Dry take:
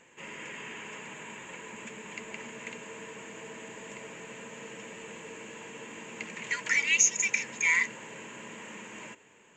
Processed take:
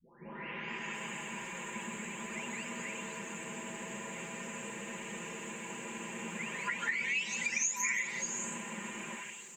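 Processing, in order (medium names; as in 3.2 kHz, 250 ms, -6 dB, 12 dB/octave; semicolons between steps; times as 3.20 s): delay that grows with frequency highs late, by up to 760 ms; resonant high shelf 7.4 kHz +6.5 dB, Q 1.5; comb 5 ms, depth 40%; delay 177 ms -12.5 dB; compression 3:1, threshold -36 dBFS, peak gain reduction 12 dB; trim +3 dB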